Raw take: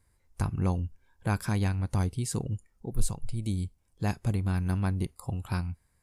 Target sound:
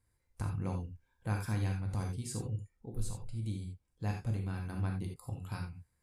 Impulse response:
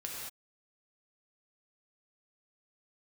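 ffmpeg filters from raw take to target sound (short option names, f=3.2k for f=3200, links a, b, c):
-filter_complex "[0:a]asettb=1/sr,asplit=3[a][b][c];[a]atrim=end=2.384[d];[b]atrim=start=2.38:end=5.04,asetpts=PTS-STARTPTS,afade=t=in:d=0.004:c=qsin,afade=t=out:st=2.656:d=0.004:c=qsin,highshelf=f=7.2k:g=-5[e];[c]atrim=start=5.036[f];[d][e]acrossfade=d=0.004:c1=hsin:c2=qsin[g];[g][f]acrossfade=d=0.004:c1=qsin:c2=hsin[h];[1:a]atrim=start_sample=2205,afade=t=out:st=0.14:d=0.01,atrim=end_sample=6615[i];[h][i]afir=irnorm=-1:irlink=0,volume=-5.5dB"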